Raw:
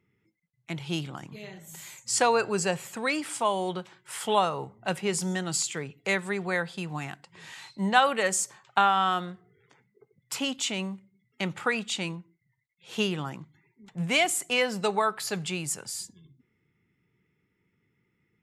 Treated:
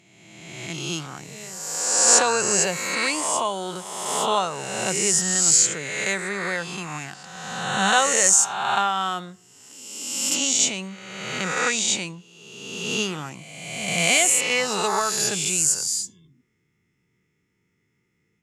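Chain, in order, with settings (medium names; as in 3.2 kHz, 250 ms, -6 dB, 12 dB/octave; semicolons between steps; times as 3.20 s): reverse spectral sustain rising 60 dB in 1.51 s; peaking EQ 6.6 kHz +12.5 dB 0.89 oct; trim -1.5 dB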